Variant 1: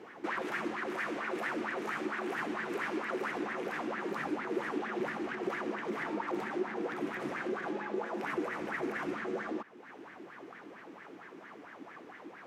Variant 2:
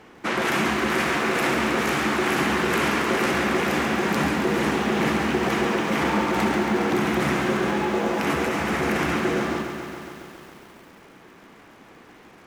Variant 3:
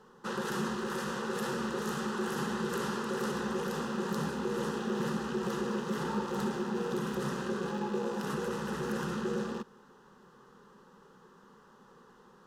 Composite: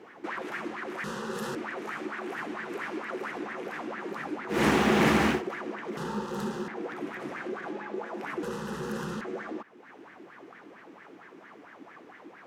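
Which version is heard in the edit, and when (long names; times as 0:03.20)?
1
0:01.04–0:01.55: punch in from 3
0:04.56–0:05.35: punch in from 2, crossfade 0.16 s
0:05.97–0:06.68: punch in from 3
0:08.43–0:09.21: punch in from 3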